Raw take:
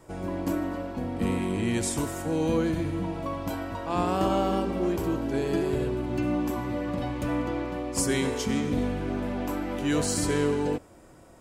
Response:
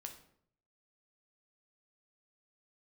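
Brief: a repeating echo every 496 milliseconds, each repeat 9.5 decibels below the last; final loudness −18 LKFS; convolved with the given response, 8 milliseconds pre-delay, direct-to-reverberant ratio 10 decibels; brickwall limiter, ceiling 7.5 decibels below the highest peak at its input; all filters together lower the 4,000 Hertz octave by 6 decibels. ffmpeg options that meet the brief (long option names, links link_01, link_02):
-filter_complex "[0:a]equalizer=frequency=4000:width_type=o:gain=-8.5,alimiter=limit=-20.5dB:level=0:latency=1,aecho=1:1:496|992|1488|1984:0.335|0.111|0.0365|0.012,asplit=2[link_01][link_02];[1:a]atrim=start_sample=2205,adelay=8[link_03];[link_02][link_03]afir=irnorm=-1:irlink=0,volume=-5.5dB[link_04];[link_01][link_04]amix=inputs=2:normalize=0,volume=12dB"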